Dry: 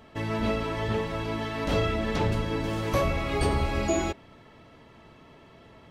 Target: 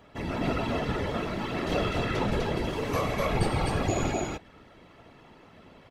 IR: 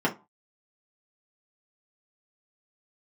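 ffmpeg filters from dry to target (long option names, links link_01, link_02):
-af "aecho=1:1:90.38|131.2|250.7:0.251|0.282|0.794,afftfilt=real='hypot(re,im)*cos(2*PI*random(0))':imag='hypot(re,im)*sin(2*PI*random(1))':win_size=512:overlap=0.75,volume=3dB"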